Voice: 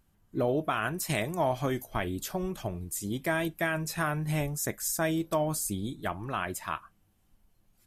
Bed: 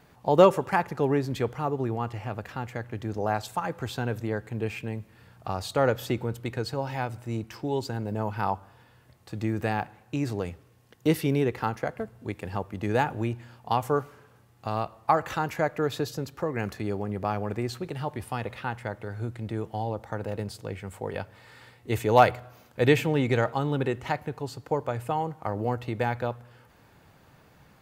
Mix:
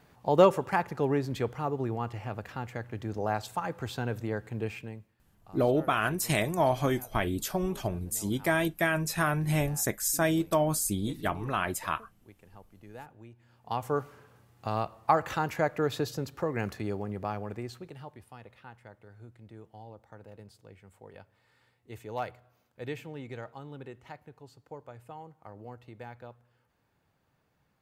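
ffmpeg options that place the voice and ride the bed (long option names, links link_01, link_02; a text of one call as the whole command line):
ffmpeg -i stem1.wav -i stem2.wav -filter_complex "[0:a]adelay=5200,volume=2.5dB[link_01];[1:a]volume=17dB,afade=type=out:start_time=4.62:duration=0.55:silence=0.11885,afade=type=in:start_time=13.36:duration=0.82:silence=0.1,afade=type=out:start_time=16.54:duration=1.71:silence=0.16788[link_02];[link_01][link_02]amix=inputs=2:normalize=0" out.wav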